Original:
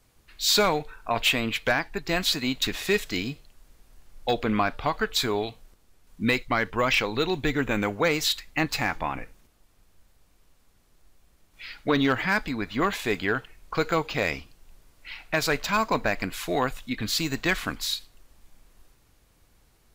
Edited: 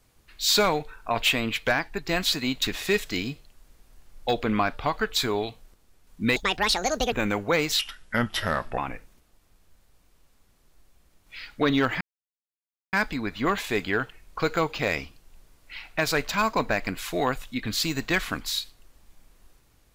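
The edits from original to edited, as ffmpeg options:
-filter_complex "[0:a]asplit=6[a][b][c][d][e][f];[a]atrim=end=6.364[g];[b]atrim=start=6.36:end=7.64,asetpts=PTS-STARTPTS,asetrate=74088,aresample=44100[h];[c]atrim=start=7.636:end=8.314[i];[d]atrim=start=8.31:end=9.05,asetpts=PTS-STARTPTS,asetrate=33075,aresample=44100[j];[e]atrim=start=9.046:end=12.28,asetpts=PTS-STARTPTS,afade=t=out:st=3.23:d=0.004:c=hsin,apad=pad_dur=0.92[k];[f]atrim=start=12.28,asetpts=PTS-STARTPTS,afade=t=in:d=0.004:c=hsin[l];[g][h]acrossfade=d=0.004:c1=hsin:c2=hsin[m];[m][i]acrossfade=d=0.004:c1=hsin:c2=hsin[n];[n][j]acrossfade=d=0.004:c1=hsin:c2=hsin[o];[k][l]concat=n=2:v=0:a=1[p];[o][p]acrossfade=d=0.004:c1=hsin:c2=hsin"

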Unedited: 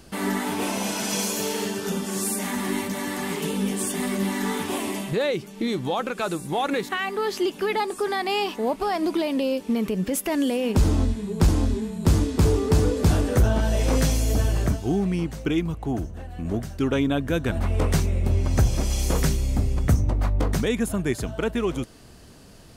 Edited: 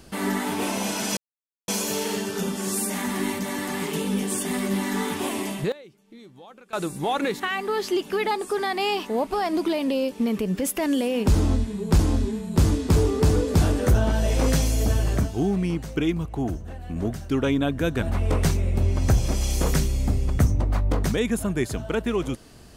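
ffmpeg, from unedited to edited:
-filter_complex "[0:a]asplit=4[a][b][c][d];[a]atrim=end=1.17,asetpts=PTS-STARTPTS,afade=t=out:st=1.166:d=0.004:c=hsin,apad=pad_dur=0.51[e];[b]atrim=start=1.17:end=5.21,asetpts=PTS-STARTPTS,afade=t=in:d=0.004:c=hsin,afade=t=out:st=3.91:d=0.13:c=log:silence=0.0944061[f];[c]atrim=start=5.21:end=6.22,asetpts=PTS-STARTPTS,volume=-20.5dB[g];[d]atrim=start=6.22,asetpts=PTS-STARTPTS,afade=t=in:d=0.13:c=log:silence=0.0944061[h];[e][f][g][h]concat=n=4:v=0:a=1"

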